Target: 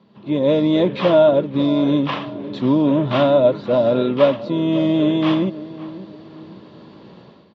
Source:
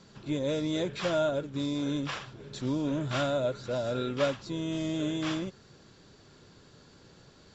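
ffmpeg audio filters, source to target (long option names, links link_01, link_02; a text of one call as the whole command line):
ffmpeg -i in.wav -filter_complex "[0:a]dynaudnorm=framelen=120:gausssize=5:maxgain=13.5dB,highpass=130,equalizer=frequency=210:width_type=q:width=4:gain=9,equalizer=frequency=340:width_type=q:width=4:gain=3,equalizer=frequency=600:width_type=q:width=4:gain=4,equalizer=frequency=1000:width_type=q:width=4:gain=6,equalizer=frequency=1500:width_type=q:width=4:gain=-9,equalizer=frequency=2300:width_type=q:width=4:gain=-3,lowpass=frequency=3500:width=0.5412,lowpass=frequency=3500:width=1.3066,asplit=2[link_01][link_02];[link_02]adelay=550,lowpass=frequency=1300:poles=1,volume=-15dB,asplit=2[link_03][link_04];[link_04]adelay=550,lowpass=frequency=1300:poles=1,volume=0.37,asplit=2[link_05][link_06];[link_06]adelay=550,lowpass=frequency=1300:poles=1,volume=0.37[link_07];[link_03][link_05][link_07]amix=inputs=3:normalize=0[link_08];[link_01][link_08]amix=inputs=2:normalize=0,volume=-1.5dB" out.wav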